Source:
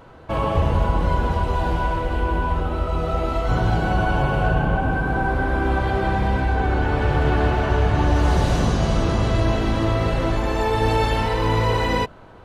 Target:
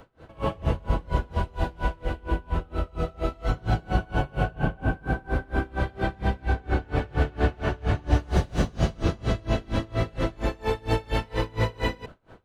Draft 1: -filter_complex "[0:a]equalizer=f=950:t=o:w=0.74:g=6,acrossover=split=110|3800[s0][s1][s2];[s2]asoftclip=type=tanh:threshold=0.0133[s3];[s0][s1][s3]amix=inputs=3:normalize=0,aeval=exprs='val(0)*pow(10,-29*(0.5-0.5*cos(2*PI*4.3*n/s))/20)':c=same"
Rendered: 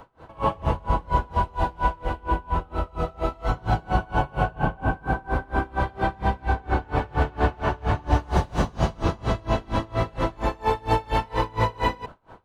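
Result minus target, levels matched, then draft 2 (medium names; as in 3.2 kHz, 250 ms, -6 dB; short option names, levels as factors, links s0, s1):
1 kHz band +6.0 dB
-filter_complex "[0:a]equalizer=f=950:t=o:w=0.74:g=-4.5,acrossover=split=110|3800[s0][s1][s2];[s2]asoftclip=type=tanh:threshold=0.0133[s3];[s0][s1][s3]amix=inputs=3:normalize=0,aeval=exprs='val(0)*pow(10,-29*(0.5-0.5*cos(2*PI*4.3*n/s))/20)':c=same"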